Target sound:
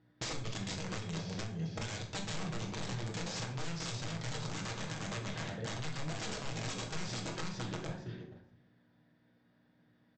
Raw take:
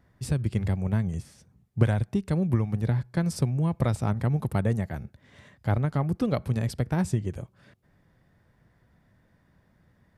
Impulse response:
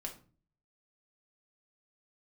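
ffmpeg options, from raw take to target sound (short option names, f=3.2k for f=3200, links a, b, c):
-filter_complex "[0:a]aeval=exprs='val(0)+0.00282*(sin(2*PI*60*n/s)+sin(2*PI*2*60*n/s)/2+sin(2*PI*3*60*n/s)/3+sin(2*PI*4*60*n/s)/4+sin(2*PI*5*60*n/s)/5)':c=same,aecho=1:1:462|924|1386:0.473|0.0852|0.0153,acrossover=split=2800[a][b];[a]acompressor=threshold=-34dB:ratio=10[c];[c][b]amix=inputs=2:normalize=0,highpass=180,equalizer=f=220:t=q:w=4:g=-6,equalizer=f=1.1k:t=q:w=4:g=-4,equalizer=f=2.1k:t=q:w=4:g=-5,lowpass=f=4.4k:w=0.5412,lowpass=f=4.4k:w=1.3066,agate=range=-14dB:threshold=-55dB:ratio=16:detection=peak,highshelf=f=2.6k:g=9.5,aresample=16000,aeval=exprs='(mod(70.8*val(0)+1,2)-1)/70.8':c=same,aresample=44100[d];[1:a]atrim=start_sample=2205,asetrate=32193,aresample=44100[e];[d][e]afir=irnorm=-1:irlink=0,alimiter=level_in=12dB:limit=-24dB:level=0:latency=1:release=240,volume=-12dB,volume=7dB"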